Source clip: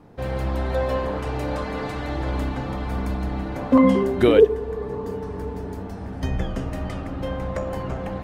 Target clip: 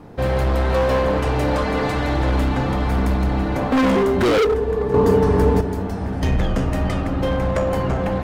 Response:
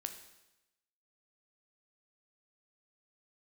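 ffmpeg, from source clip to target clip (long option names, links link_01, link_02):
-filter_complex "[0:a]asplit=2[link_01][link_02];[1:a]atrim=start_sample=2205,atrim=end_sample=3087[link_03];[link_02][link_03]afir=irnorm=-1:irlink=0,volume=-1.5dB[link_04];[link_01][link_04]amix=inputs=2:normalize=0,volume=18.5dB,asoftclip=hard,volume=-18.5dB,asettb=1/sr,asplit=3[link_05][link_06][link_07];[link_05]atrim=end=4.944[link_08];[link_06]atrim=start=4.94:end=5.61,asetpts=PTS-STARTPTS,afade=type=in:duration=0.004:curve=qsin,afade=type=out:start_time=0.666:duration=0.004:curve=qsin,acontrast=83[link_09];[link_07]atrim=start=5.606[link_10];[link_08][link_09]acrossfade=duration=0.004:curve1=hsin:curve2=qsin[link_11];[link_11][link_10]acrossfade=duration=0.004:curve1=qsin:curve2=hsin,volume=4dB"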